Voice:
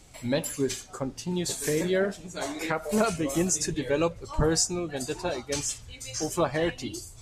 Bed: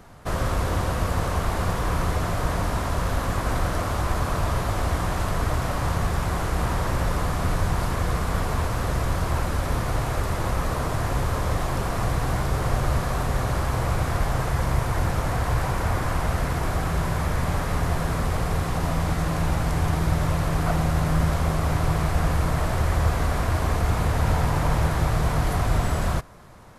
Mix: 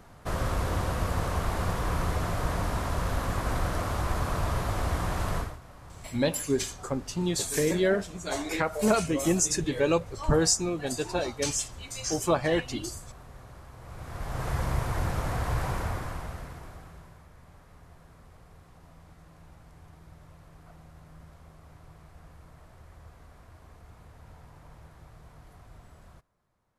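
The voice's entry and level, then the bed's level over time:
5.90 s, +1.0 dB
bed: 5.38 s -4.5 dB
5.60 s -23.5 dB
13.77 s -23.5 dB
14.50 s -5.5 dB
15.75 s -5.5 dB
17.28 s -29 dB

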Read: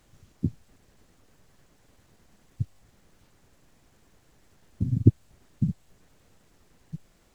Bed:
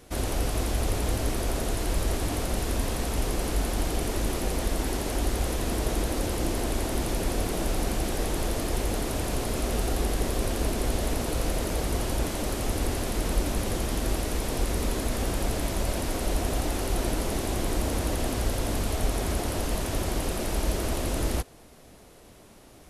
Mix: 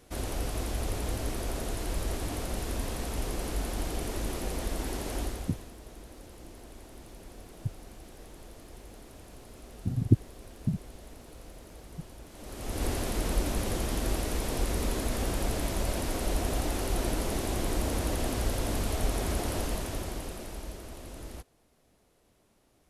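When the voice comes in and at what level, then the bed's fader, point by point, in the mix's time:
5.05 s, -4.0 dB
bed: 5.21 s -5.5 dB
5.74 s -20.5 dB
12.27 s -20.5 dB
12.85 s -2.5 dB
19.59 s -2.5 dB
20.85 s -15.5 dB

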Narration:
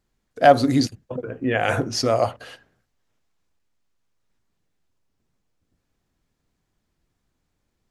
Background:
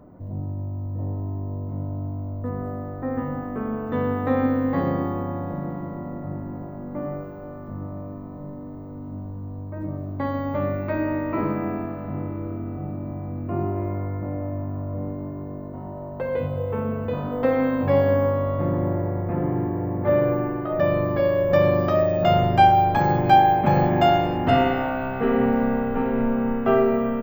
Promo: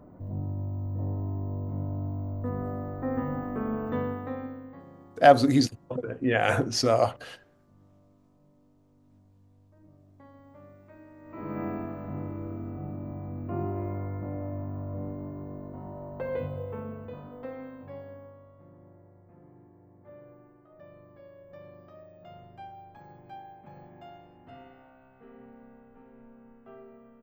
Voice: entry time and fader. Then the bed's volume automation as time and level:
4.80 s, -2.5 dB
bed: 3.88 s -3 dB
4.87 s -26.5 dB
11.16 s -26.5 dB
11.60 s -6 dB
16.34 s -6 dB
18.55 s -30.5 dB

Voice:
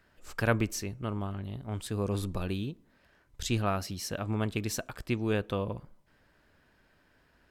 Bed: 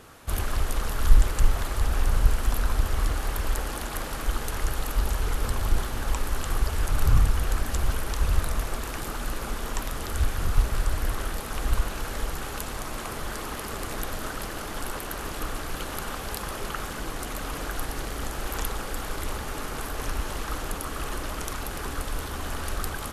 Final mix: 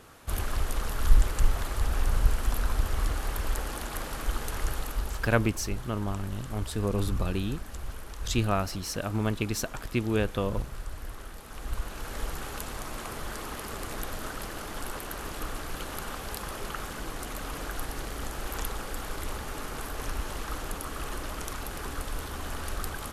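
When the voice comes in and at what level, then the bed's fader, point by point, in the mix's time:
4.85 s, +2.5 dB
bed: 4.72 s -3 dB
5.53 s -12.5 dB
11.39 s -12.5 dB
12.24 s -3.5 dB

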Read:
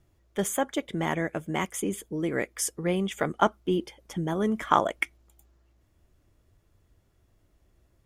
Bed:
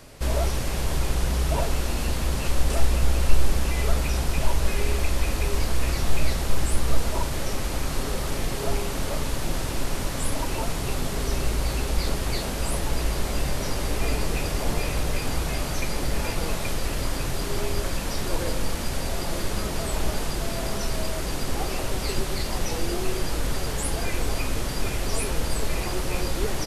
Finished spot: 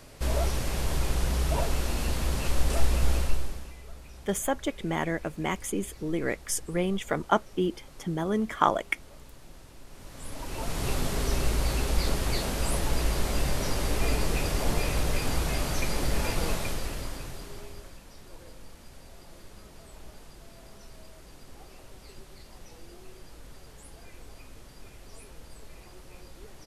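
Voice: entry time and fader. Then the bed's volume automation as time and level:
3.90 s, -1.0 dB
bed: 3.16 s -3 dB
3.81 s -22.5 dB
9.85 s -22.5 dB
10.85 s -1.5 dB
16.50 s -1.5 dB
18.05 s -21.5 dB

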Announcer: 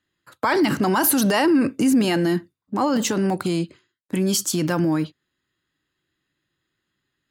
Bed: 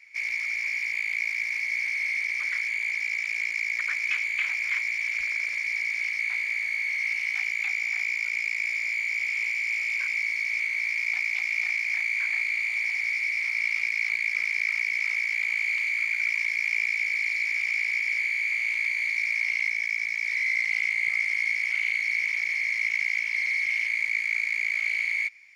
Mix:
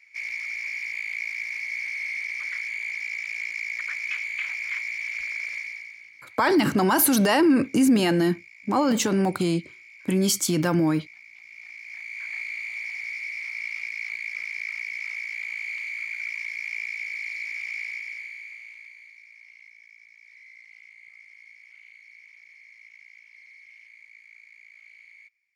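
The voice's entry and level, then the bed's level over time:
5.95 s, -1.0 dB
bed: 5.57 s -3 dB
6.11 s -21 dB
11.35 s -21 dB
12.37 s -6 dB
17.84 s -6 dB
19.23 s -24 dB

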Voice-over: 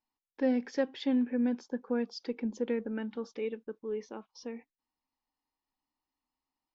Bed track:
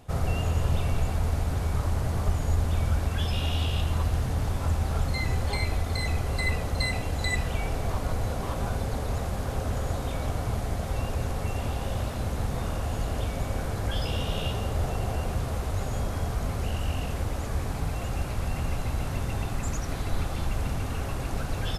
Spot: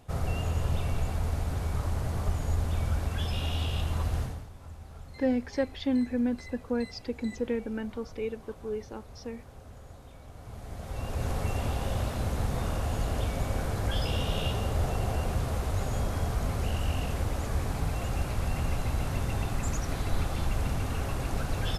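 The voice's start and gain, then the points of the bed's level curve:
4.80 s, +1.5 dB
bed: 4.22 s -3.5 dB
4.49 s -19 dB
10.27 s -19 dB
11.30 s -0.5 dB

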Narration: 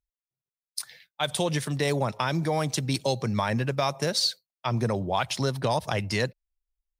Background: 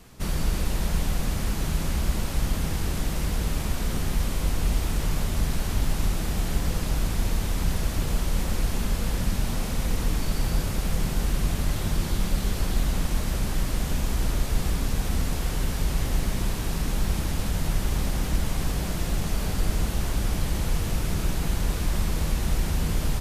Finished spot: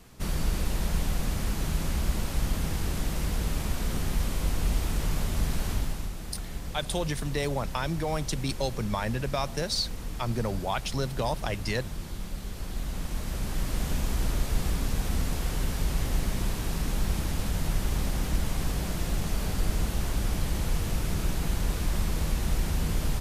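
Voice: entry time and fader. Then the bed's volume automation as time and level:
5.55 s, -4.0 dB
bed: 5.71 s -2.5 dB
6.12 s -11 dB
12.49 s -11 dB
13.83 s -2.5 dB

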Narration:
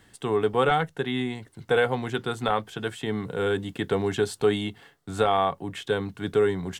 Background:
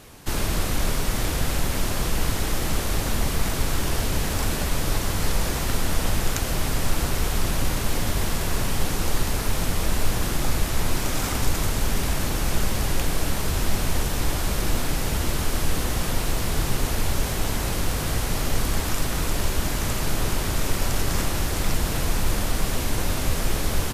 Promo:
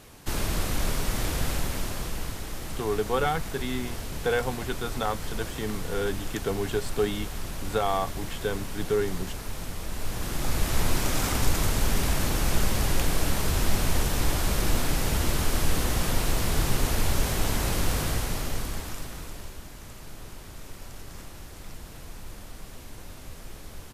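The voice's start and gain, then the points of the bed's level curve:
2.55 s, -4.0 dB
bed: 1.48 s -3.5 dB
2.43 s -11 dB
9.89 s -11 dB
10.74 s -1 dB
17.97 s -1 dB
19.67 s -18.5 dB

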